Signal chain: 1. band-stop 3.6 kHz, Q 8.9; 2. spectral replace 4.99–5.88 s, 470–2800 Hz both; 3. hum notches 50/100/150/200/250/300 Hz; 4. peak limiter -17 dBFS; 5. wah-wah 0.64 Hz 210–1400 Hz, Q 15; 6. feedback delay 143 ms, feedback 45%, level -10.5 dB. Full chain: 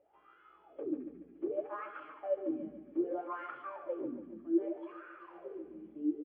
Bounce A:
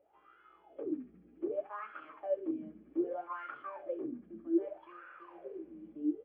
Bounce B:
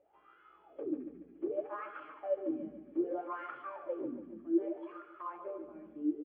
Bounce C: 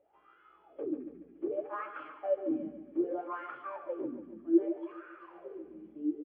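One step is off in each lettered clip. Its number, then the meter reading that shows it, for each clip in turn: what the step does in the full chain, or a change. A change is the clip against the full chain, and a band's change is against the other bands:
6, echo-to-direct -9.5 dB to none; 2, momentary loudness spread change -3 LU; 4, crest factor change +2.5 dB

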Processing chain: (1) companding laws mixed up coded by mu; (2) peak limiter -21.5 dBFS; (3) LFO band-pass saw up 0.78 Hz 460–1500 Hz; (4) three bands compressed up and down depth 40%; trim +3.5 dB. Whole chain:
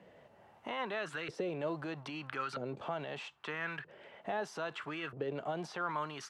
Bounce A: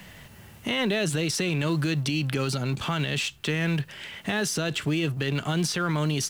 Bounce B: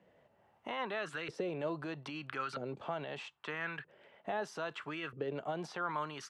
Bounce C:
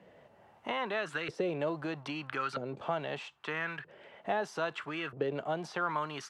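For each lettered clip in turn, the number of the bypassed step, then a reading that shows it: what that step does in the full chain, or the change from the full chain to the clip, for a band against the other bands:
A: 3, 1 kHz band -13.0 dB; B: 1, distortion -24 dB; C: 2, mean gain reduction 2.0 dB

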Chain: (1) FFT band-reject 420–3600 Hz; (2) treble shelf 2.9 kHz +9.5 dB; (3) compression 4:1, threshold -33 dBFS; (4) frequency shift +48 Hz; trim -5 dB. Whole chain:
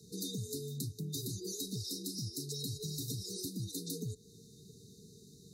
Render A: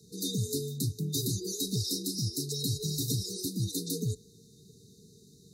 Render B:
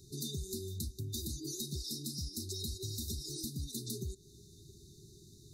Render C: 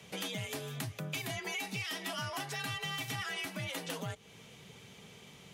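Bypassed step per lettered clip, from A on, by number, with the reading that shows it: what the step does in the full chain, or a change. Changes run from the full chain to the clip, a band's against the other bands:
3, mean gain reduction 5.0 dB; 4, 500 Hz band -1.5 dB; 1, 4 kHz band +5.5 dB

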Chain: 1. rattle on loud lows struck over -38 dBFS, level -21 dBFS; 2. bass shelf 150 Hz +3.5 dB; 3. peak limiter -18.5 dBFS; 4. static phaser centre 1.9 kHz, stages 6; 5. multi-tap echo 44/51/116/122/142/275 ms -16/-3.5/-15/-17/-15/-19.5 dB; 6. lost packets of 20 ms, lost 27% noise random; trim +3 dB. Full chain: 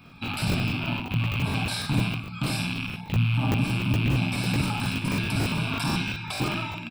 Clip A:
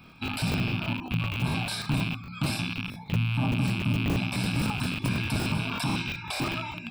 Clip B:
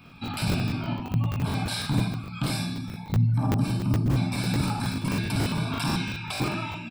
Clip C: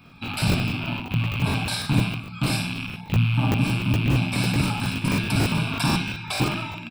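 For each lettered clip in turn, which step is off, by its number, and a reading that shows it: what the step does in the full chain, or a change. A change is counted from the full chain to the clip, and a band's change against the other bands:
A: 5, loudness change -2.0 LU; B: 1, 2 kHz band -5.0 dB; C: 3, loudness change +2.5 LU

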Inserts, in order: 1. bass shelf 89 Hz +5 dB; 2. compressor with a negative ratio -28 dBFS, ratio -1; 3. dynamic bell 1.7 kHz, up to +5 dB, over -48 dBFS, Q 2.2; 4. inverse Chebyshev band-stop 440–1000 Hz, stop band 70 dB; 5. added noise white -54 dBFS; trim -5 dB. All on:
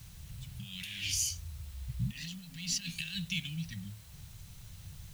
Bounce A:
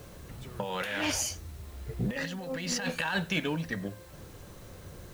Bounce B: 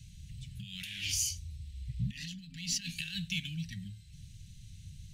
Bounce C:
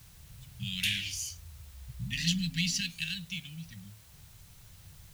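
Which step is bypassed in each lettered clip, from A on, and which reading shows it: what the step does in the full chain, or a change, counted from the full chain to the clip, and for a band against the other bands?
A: 4, 2 kHz band +8.5 dB; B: 5, momentary loudness spread change +1 LU; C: 2, crest factor change +2.0 dB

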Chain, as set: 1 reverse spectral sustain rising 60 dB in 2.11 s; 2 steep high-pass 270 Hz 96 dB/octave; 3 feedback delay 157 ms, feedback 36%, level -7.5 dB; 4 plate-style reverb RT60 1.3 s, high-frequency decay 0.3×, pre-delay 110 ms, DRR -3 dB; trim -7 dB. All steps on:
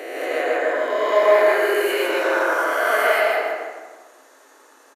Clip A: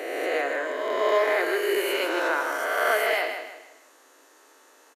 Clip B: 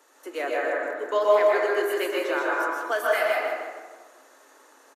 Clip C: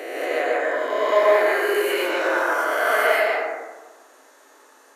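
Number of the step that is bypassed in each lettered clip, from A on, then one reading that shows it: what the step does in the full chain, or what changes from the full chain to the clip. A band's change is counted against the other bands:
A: 4, echo-to-direct 4.5 dB to -7.0 dB; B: 1, momentary loudness spread change +4 LU; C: 3, loudness change -1.5 LU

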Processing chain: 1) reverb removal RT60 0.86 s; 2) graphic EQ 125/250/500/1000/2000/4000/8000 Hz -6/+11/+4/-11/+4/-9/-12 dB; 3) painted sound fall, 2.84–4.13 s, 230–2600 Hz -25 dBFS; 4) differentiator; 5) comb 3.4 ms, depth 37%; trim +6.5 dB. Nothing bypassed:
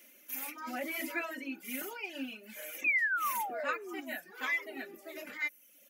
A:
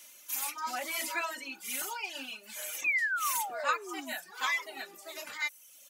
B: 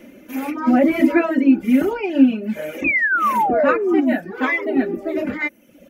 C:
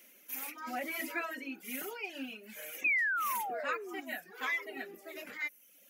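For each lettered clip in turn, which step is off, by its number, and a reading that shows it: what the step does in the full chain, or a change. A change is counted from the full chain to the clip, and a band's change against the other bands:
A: 2, 250 Hz band -10.0 dB; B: 4, 250 Hz band +14.0 dB; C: 5, 250 Hz band -1.5 dB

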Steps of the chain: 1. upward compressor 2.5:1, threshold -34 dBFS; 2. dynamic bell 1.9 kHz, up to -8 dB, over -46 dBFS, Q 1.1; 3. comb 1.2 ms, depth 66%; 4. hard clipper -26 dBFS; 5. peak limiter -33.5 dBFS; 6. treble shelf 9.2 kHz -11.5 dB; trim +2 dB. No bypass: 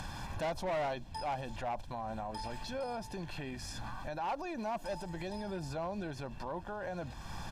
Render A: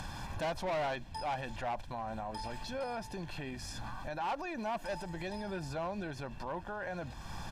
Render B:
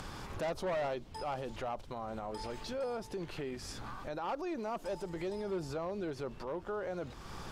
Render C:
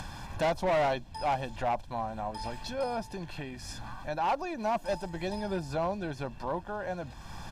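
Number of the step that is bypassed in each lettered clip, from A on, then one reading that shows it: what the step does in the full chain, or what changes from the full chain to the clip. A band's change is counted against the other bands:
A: 2, 2 kHz band +2.5 dB; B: 3, 500 Hz band +3.5 dB; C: 5, mean gain reduction 3.5 dB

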